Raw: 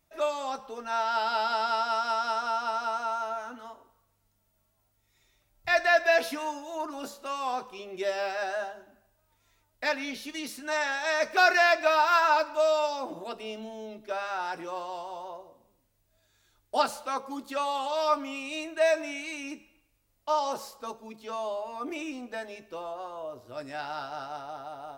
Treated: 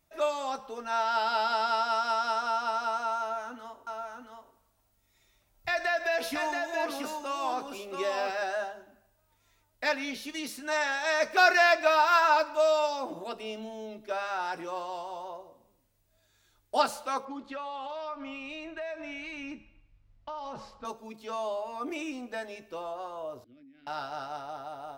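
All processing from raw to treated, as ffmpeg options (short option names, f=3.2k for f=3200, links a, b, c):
-filter_complex "[0:a]asettb=1/sr,asplit=3[a][b][c];[a]atrim=end=3.194[d];[b]atrim=start=3.19:end=8.42,asetpts=PTS-STARTPTS,afade=t=in:d=0.004:c=qsin,afade=t=out:st=5.226:d=0.004:c=qsin,acompressor=threshold=-26dB:ratio=3:attack=3.2:release=140:knee=1:detection=peak,aecho=1:1:677:0.596,atrim=end_sample=230643[e];[c]atrim=start=8.416[f];[d][e]acrossfade=d=0.004:c1=hsin:c2=qsin[g];[g][f]acrossfade=d=0.004:c1=qsin:c2=hsin,asettb=1/sr,asplit=3[h][i][j];[h]atrim=end=17.254[k];[i]atrim=start=17.25:end=20.85,asetpts=PTS-STARTPTS,afade=t=in:d=0.004:c=qsin,afade=t=out:st=3.596:d=0.004:c=qsin,acompressor=threshold=-34dB:ratio=5:attack=3.2:release=140:knee=1:detection=peak,lowpass=3.2k,asubboost=boost=7:cutoff=160[l];[j]atrim=start=20.846[m];[k][l]acrossfade=d=0.004:c1=hsin:c2=qsin[n];[n][m]acrossfade=d=0.004:c1=qsin:c2=hsin,asettb=1/sr,asplit=3[o][p][q];[o]atrim=end=23.444[r];[p]atrim=start=23.44:end=23.87,asetpts=PTS-STARTPTS,afade=t=in:d=0.004:c=qsin,afade=t=out:st=0.426:d=0.004:c=qsin,asplit=3[s][t][u];[s]bandpass=f=270:t=q:w=8,volume=0dB[v];[t]bandpass=f=2.29k:t=q:w=8,volume=-6dB[w];[u]bandpass=f=3.01k:t=q:w=8,volume=-9dB[x];[v][w][x]amix=inputs=3:normalize=0,acompressor=threshold=-56dB:ratio=12:attack=3.2:release=140:knee=1:detection=peak,aemphasis=mode=reproduction:type=bsi[y];[q]atrim=start=23.866[z];[r][y]acrossfade=d=0.004:c1=hsin:c2=qsin[aa];[aa][z]acrossfade=d=0.004:c1=qsin:c2=hsin"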